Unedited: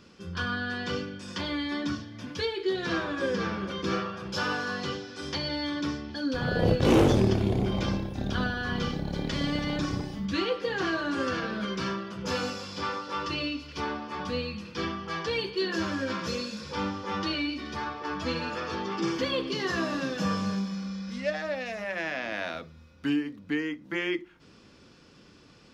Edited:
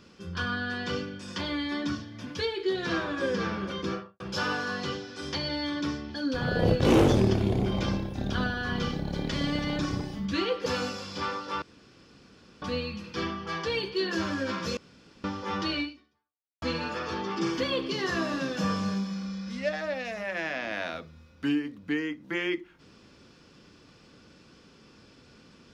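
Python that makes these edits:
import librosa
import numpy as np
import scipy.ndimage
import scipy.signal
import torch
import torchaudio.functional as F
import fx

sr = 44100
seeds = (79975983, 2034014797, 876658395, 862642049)

y = fx.studio_fade_out(x, sr, start_s=3.76, length_s=0.44)
y = fx.edit(y, sr, fx.cut(start_s=10.66, length_s=1.61),
    fx.room_tone_fill(start_s=13.23, length_s=1.0),
    fx.room_tone_fill(start_s=16.38, length_s=0.47),
    fx.fade_out_span(start_s=17.43, length_s=0.8, curve='exp'), tone=tone)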